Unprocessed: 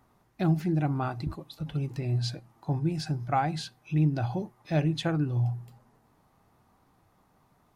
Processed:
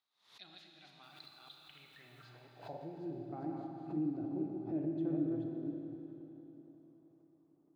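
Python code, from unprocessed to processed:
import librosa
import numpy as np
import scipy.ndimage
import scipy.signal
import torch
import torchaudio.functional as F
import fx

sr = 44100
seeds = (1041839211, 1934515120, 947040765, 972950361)

y = fx.reverse_delay(x, sr, ms=248, wet_db=-3.0)
y = fx.dynamic_eq(y, sr, hz=5400.0, q=4.5, threshold_db=-58.0, ratio=4.0, max_db=-7)
y = fx.filter_sweep_bandpass(y, sr, from_hz=3800.0, to_hz=320.0, start_s=1.39, end_s=3.2, q=5.0)
y = fx.dmg_noise_colour(y, sr, seeds[0], colour='white', level_db=-76.0, at=(1.02, 2.25), fade=0.02)
y = fx.rev_schroeder(y, sr, rt60_s=3.8, comb_ms=28, drr_db=1.5)
y = fx.pre_swell(y, sr, db_per_s=120.0)
y = F.gain(torch.from_numpy(y), -3.0).numpy()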